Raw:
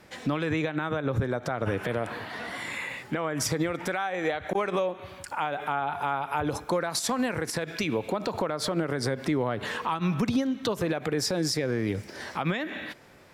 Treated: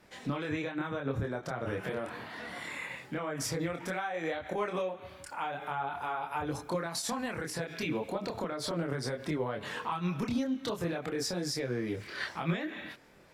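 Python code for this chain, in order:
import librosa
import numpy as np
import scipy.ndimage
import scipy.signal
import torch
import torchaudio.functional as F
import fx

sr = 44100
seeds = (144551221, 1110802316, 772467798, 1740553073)

y = fx.spec_box(x, sr, start_s=12.01, length_s=0.25, low_hz=1000.0, high_hz=4800.0, gain_db=11)
y = fx.chorus_voices(y, sr, voices=4, hz=0.47, base_ms=26, depth_ms=3.8, mix_pct=45)
y = y * 10.0 ** (-3.0 / 20.0)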